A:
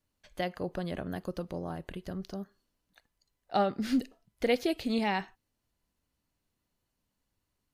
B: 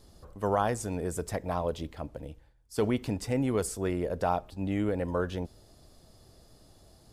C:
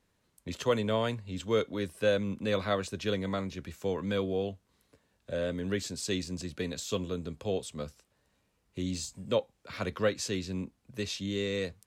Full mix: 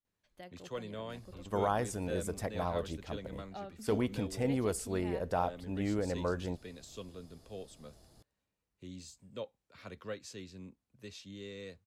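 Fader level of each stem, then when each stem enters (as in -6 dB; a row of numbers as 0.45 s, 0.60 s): -17.5 dB, -4.0 dB, -13.5 dB; 0.00 s, 1.10 s, 0.05 s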